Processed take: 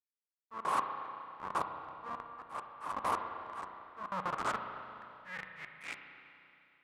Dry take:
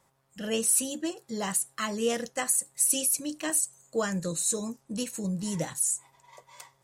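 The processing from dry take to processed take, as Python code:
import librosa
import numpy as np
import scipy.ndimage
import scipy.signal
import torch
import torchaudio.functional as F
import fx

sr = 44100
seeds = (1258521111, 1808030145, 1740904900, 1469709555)

y = fx.wiener(x, sr, points=9)
y = fx.peak_eq(y, sr, hz=150.0, db=10.5, octaves=0.63)
y = fx.notch(y, sr, hz=4600.0, q=11.0)
y = fx.schmitt(y, sr, flips_db=-24.0)
y = fx.auto_swell(y, sr, attack_ms=291.0)
y = fx.filter_sweep_bandpass(y, sr, from_hz=1100.0, to_hz=2600.0, start_s=4.08, end_s=6.25, q=6.1)
y = fx.dynamic_eq(y, sr, hz=1600.0, q=1.2, threshold_db=-59.0, ratio=4.0, max_db=-5)
y = fx.rev_spring(y, sr, rt60_s=2.8, pass_ms=(32, 37), chirp_ms=35, drr_db=5.0)
y = y * librosa.db_to_amplitude(18.0)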